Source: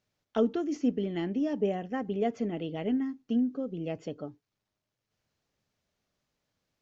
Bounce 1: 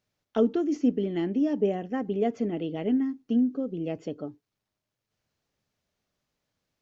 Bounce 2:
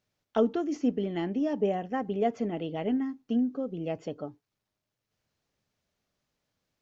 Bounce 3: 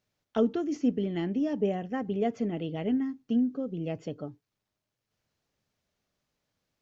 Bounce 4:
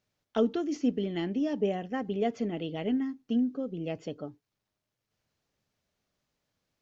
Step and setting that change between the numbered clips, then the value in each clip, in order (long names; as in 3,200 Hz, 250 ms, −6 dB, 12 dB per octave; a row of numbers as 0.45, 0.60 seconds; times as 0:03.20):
dynamic equaliser, frequency: 320, 860, 120, 4,000 Hertz